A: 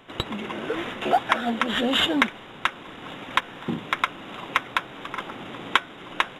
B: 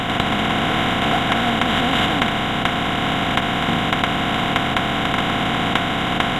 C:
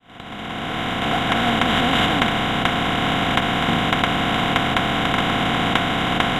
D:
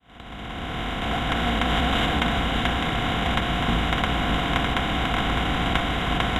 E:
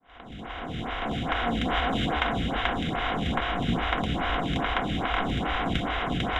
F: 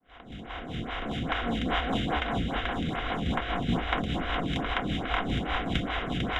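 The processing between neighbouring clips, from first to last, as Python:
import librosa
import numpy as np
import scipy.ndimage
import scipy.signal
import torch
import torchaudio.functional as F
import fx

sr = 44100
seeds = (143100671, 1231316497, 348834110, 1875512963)

y1 = fx.bin_compress(x, sr, power=0.2)
y1 = fx.low_shelf_res(y1, sr, hz=240.0, db=7.0, q=1.5)
y1 = F.gain(torch.from_numpy(y1), -5.0).numpy()
y2 = fx.fade_in_head(y1, sr, length_s=1.5)
y3 = fx.octave_divider(y2, sr, octaves=2, level_db=2.0)
y3 = y3 + 10.0 ** (-6.0 / 20.0) * np.pad(y3, (int(607 * sr / 1000.0), 0))[:len(y3)]
y3 = F.gain(torch.from_numpy(y3), -6.0).numpy()
y4 = fx.air_absorb(y3, sr, metres=64.0)
y4 = fx.stagger_phaser(y4, sr, hz=2.4)
y5 = fx.rotary(y4, sr, hz=5.0)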